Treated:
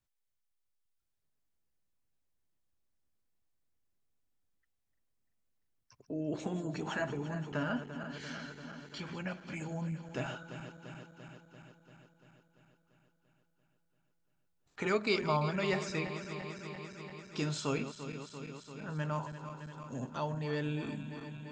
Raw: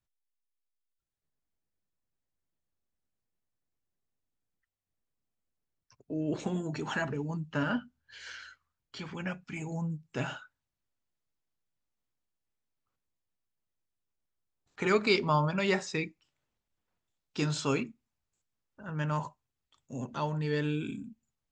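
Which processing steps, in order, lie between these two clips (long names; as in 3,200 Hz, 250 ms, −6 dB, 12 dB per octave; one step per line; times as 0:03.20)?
feedback delay that plays each chunk backwards 171 ms, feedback 81%, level −12 dB
dynamic equaliser 650 Hz, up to +5 dB, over −52 dBFS, Q 4.8
in parallel at +1.5 dB: downward compressor, threshold −42 dBFS, peak gain reduction 20 dB
on the sum: level −6.5 dB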